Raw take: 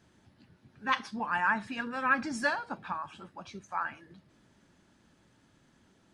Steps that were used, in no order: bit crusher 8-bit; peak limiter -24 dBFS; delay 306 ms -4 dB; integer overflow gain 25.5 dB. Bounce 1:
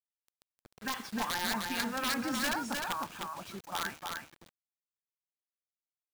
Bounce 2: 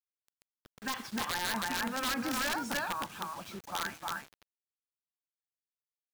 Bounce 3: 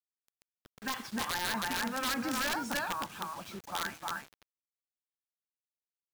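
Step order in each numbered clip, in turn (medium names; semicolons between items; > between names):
peak limiter > integer overflow > bit crusher > delay; delay > bit crusher > peak limiter > integer overflow; delay > peak limiter > integer overflow > bit crusher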